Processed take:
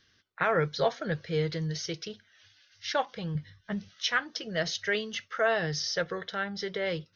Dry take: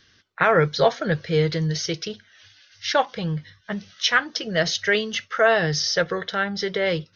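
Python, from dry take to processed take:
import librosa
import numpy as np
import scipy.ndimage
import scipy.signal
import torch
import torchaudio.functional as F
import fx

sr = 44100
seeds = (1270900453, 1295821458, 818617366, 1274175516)

y = fx.low_shelf(x, sr, hz=220.0, db=9.5, at=(3.35, 3.89))
y = y * 10.0 ** (-8.5 / 20.0)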